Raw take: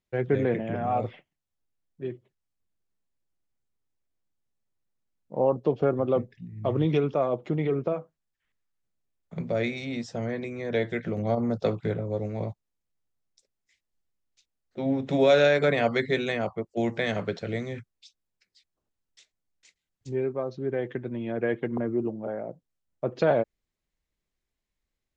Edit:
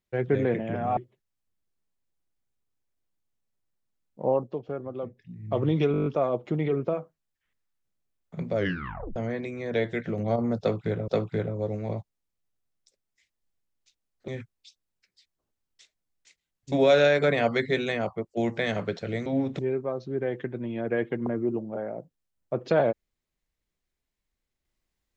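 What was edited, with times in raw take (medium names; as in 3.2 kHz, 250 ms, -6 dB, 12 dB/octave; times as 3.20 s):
0.97–2.10 s: delete
5.41–6.53 s: dip -10 dB, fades 0.30 s
7.05 s: stutter 0.02 s, 8 plays
9.55 s: tape stop 0.60 s
11.59–12.07 s: loop, 2 plays
14.79–15.12 s: swap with 17.66–20.10 s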